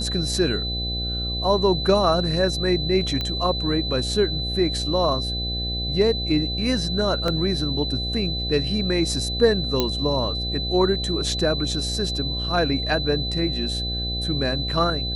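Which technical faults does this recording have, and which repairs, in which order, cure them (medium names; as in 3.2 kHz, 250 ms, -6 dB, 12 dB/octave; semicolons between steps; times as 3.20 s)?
buzz 60 Hz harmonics 13 -29 dBFS
whine 4 kHz -27 dBFS
3.21 s: pop -13 dBFS
7.28 s: dropout 2.4 ms
9.80 s: pop -6 dBFS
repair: de-click; de-hum 60 Hz, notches 13; band-stop 4 kHz, Q 30; interpolate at 7.28 s, 2.4 ms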